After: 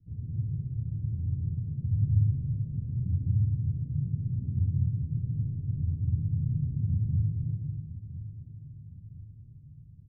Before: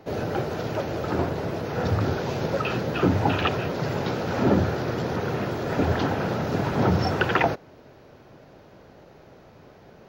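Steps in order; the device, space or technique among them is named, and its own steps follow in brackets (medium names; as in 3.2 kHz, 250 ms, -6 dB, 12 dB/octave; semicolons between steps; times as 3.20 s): club heard from the street (peak limiter -16 dBFS, peak gain reduction 7.5 dB; low-pass 130 Hz 24 dB/octave; reverberation RT60 0.95 s, pre-delay 106 ms, DRR -1.5 dB); feedback delay 1011 ms, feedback 46%, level -13.5 dB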